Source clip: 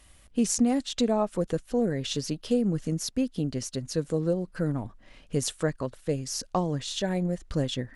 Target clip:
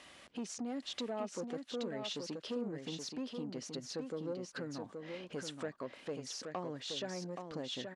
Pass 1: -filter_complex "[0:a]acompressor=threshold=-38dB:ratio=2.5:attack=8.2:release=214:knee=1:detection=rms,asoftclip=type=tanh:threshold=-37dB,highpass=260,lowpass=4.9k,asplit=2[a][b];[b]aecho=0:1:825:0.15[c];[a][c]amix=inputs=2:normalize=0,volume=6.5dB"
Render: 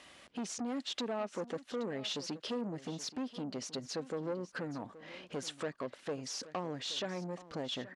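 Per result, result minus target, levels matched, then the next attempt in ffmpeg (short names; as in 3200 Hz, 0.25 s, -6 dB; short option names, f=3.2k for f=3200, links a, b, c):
echo-to-direct -11 dB; compressor: peak gain reduction -5.5 dB
-filter_complex "[0:a]acompressor=threshold=-38dB:ratio=2.5:attack=8.2:release=214:knee=1:detection=rms,asoftclip=type=tanh:threshold=-37dB,highpass=260,lowpass=4.9k,asplit=2[a][b];[b]aecho=0:1:825:0.531[c];[a][c]amix=inputs=2:normalize=0,volume=6.5dB"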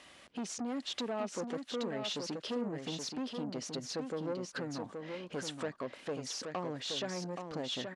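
compressor: peak gain reduction -5.5 dB
-filter_complex "[0:a]acompressor=threshold=-47dB:ratio=2.5:attack=8.2:release=214:knee=1:detection=rms,asoftclip=type=tanh:threshold=-37dB,highpass=260,lowpass=4.9k,asplit=2[a][b];[b]aecho=0:1:825:0.531[c];[a][c]amix=inputs=2:normalize=0,volume=6.5dB"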